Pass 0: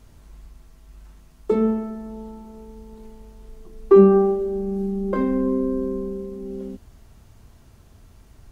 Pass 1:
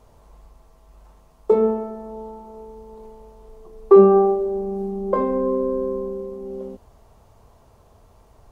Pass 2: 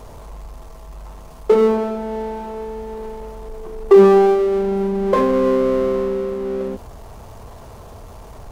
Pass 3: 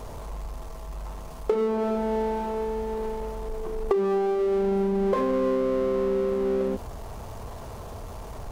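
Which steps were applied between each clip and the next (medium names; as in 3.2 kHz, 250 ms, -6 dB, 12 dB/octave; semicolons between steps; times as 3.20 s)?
high-order bell 700 Hz +11.5 dB; trim -4.5 dB
power-law waveshaper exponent 0.7
compression 16:1, threshold -21 dBFS, peak gain reduction 17 dB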